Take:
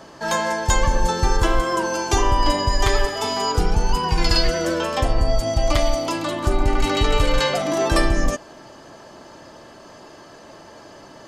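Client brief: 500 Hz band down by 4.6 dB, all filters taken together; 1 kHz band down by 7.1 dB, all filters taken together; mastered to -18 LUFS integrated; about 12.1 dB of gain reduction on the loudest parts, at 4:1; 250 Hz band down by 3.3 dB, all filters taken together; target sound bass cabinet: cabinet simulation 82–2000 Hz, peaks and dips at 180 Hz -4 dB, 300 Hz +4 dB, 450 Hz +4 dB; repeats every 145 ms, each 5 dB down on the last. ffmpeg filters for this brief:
-af "equalizer=f=250:t=o:g=-5.5,equalizer=f=500:t=o:g=-4.5,equalizer=f=1000:t=o:g=-7,acompressor=threshold=0.0355:ratio=4,highpass=f=82:w=0.5412,highpass=f=82:w=1.3066,equalizer=f=180:t=q:w=4:g=-4,equalizer=f=300:t=q:w=4:g=4,equalizer=f=450:t=q:w=4:g=4,lowpass=f=2000:w=0.5412,lowpass=f=2000:w=1.3066,aecho=1:1:145|290|435|580|725|870|1015:0.562|0.315|0.176|0.0988|0.0553|0.031|0.0173,volume=6.31"

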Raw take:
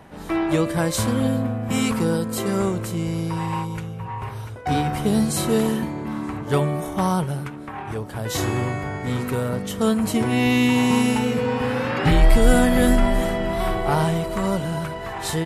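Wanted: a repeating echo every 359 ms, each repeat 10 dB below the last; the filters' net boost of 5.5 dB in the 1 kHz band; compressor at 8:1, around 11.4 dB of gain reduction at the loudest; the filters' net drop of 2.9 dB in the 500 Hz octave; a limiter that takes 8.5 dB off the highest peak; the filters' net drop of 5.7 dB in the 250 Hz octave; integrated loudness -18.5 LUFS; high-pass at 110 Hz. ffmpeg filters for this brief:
-af "highpass=110,equalizer=f=250:t=o:g=-6,equalizer=f=500:t=o:g=-5,equalizer=f=1000:t=o:g=9,acompressor=threshold=0.0501:ratio=8,alimiter=limit=0.0668:level=0:latency=1,aecho=1:1:359|718|1077|1436:0.316|0.101|0.0324|0.0104,volume=4.73"

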